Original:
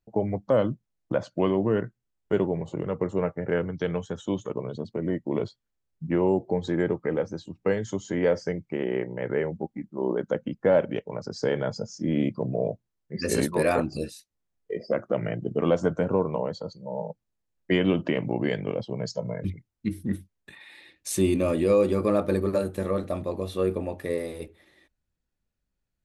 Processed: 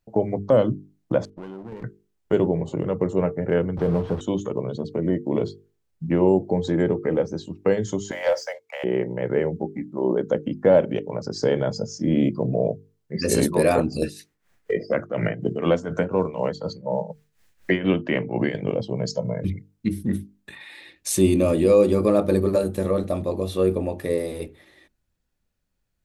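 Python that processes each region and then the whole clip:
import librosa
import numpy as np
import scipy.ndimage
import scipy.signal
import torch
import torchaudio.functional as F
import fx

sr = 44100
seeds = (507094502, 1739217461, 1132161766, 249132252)

y = fx.chain(x, sr, fx.level_steps(step_db=21),
    fx.highpass(hz=62.0, slope=12),
    fx.running_max(window=17), at=(1.25, 1.84))
y = fx.chain(y, sr, fx.delta_mod(bps=32000, step_db=-31.5),
    fx.lowpass(hz=1100.0, slope=12),
    fx.leveller(passes=1), at=(3.77, 4.21))
y = fx.chain(y, sr, fx.steep_highpass(hz=530.0, slope=96),
    fx.leveller(passes=1), at=(8.11, 8.84))
y = fx.chain(y, sr, fx.peak_eq(hz=1800.0, db=9.5, octaves=1.2),
    fx.tremolo(hz=4.1, depth=0.77),
    fx.band_squash(depth_pct=70), at=(14.02, 18.55))
y = fx.hum_notches(y, sr, base_hz=50, count=9)
y = fx.dynamic_eq(y, sr, hz=1600.0, q=0.75, threshold_db=-43.0, ratio=4.0, max_db=-6)
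y = F.gain(torch.from_numpy(y), 6.0).numpy()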